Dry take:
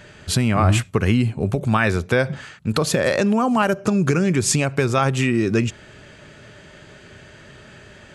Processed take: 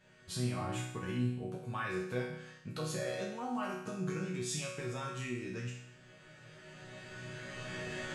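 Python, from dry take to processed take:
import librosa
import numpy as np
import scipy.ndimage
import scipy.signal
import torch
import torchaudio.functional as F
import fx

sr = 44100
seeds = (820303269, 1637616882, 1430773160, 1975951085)

y = fx.recorder_agc(x, sr, target_db=-10.5, rise_db_per_s=9.8, max_gain_db=30)
y = fx.peak_eq(y, sr, hz=3600.0, db=fx.line((4.2, 4.5), (4.66, 12.5)), octaves=0.34, at=(4.2, 4.66), fade=0.02)
y = fx.resonator_bank(y, sr, root=47, chord='major', decay_s=0.75)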